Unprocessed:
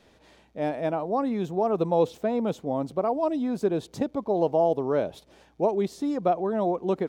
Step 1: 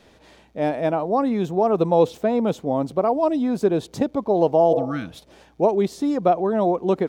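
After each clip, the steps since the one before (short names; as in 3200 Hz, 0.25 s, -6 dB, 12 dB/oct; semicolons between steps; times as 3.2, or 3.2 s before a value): spectral repair 4.74–5.17, 340–1100 Hz both; gain +5.5 dB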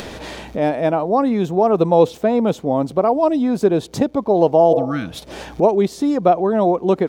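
upward compressor, threshold -22 dBFS; gain +4 dB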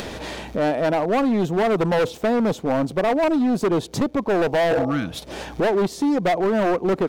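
hard clip -16.5 dBFS, distortion -7 dB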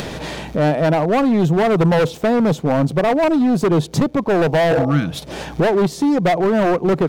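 bell 150 Hz +10.5 dB 0.38 oct; gain +3.5 dB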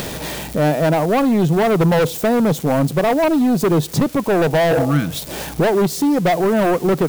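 switching spikes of -22.5 dBFS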